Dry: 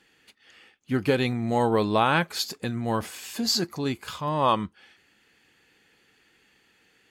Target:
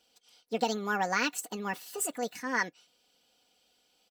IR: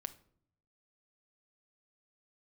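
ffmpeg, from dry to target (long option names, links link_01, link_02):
-af "aecho=1:1:7.1:0.61,asetrate=76440,aresample=44100,volume=-8.5dB"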